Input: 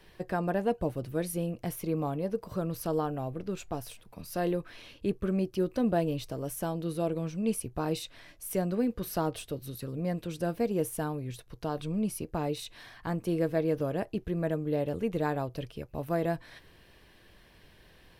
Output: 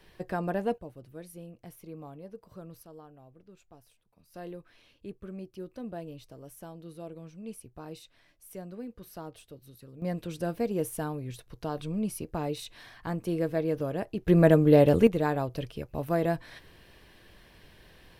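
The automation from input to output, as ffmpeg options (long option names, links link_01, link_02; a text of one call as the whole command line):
ffmpeg -i in.wav -af "asetnsamples=nb_out_samples=441:pad=0,asendcmd='0.78 volume volume -13dB;2.83 volume volume -19.5dB;4.34 volume volume -12dB;10.02 volume volume -0.5dB;14.28 volume volume 11.5dB;15.07 volume volume 2.5dB',volume=-1dB" out.wav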